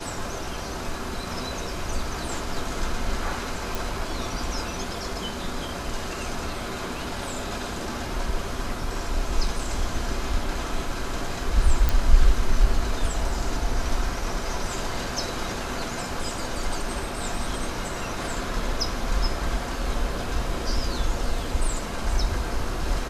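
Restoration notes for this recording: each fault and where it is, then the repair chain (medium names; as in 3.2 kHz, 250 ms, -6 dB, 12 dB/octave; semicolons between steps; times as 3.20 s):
3.75 s: pop
11.89 s: pop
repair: de-click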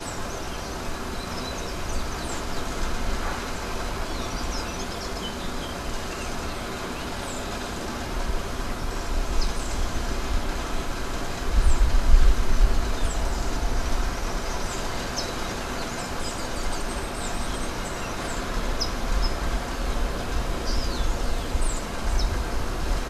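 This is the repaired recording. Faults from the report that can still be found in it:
nothing left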